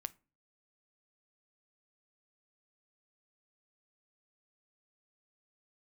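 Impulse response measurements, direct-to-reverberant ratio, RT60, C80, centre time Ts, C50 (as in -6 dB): 14.5 dB, 0.35 s, 30.0 dB, 2 ms, 23.5 dB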